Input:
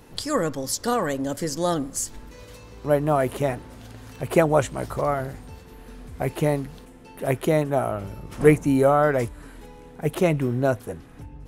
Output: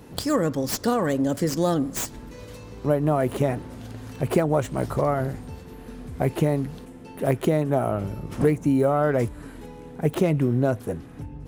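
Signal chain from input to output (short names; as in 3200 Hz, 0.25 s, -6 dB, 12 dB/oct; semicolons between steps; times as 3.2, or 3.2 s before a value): tracing distortion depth 0.085 ms; HPF 140 Hz 6 dB/oct; low shelf 390 Hz +10 dB; compressor 6:1, threshold -17 dBFS, peak gain reduction 11.5 dB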